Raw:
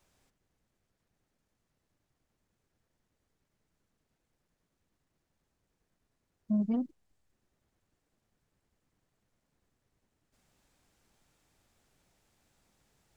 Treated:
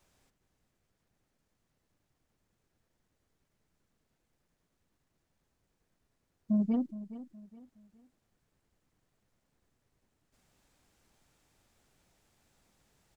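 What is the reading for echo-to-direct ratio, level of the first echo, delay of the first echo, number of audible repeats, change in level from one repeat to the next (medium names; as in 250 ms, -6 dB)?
-14.5 dB, -15.0 dB, 417 ms, 3, -9.5 dB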